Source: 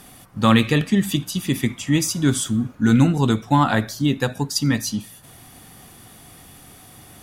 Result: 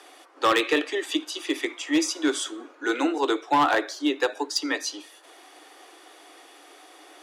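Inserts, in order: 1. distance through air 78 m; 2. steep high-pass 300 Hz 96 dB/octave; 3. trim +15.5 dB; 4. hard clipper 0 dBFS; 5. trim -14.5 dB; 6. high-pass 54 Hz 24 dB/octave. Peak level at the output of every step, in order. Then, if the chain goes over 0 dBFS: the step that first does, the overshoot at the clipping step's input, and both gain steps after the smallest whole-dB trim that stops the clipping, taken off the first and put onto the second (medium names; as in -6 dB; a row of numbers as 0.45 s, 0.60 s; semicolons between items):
-4.5 dBFS, -6.0 dBFS, +9.5 dBFS, 0.0 dBFS, -14.5 dBFS, -12.0 dBFS; step 3, 9.5 dB; step 3 +5.5 dB, step 5 -4.5 dB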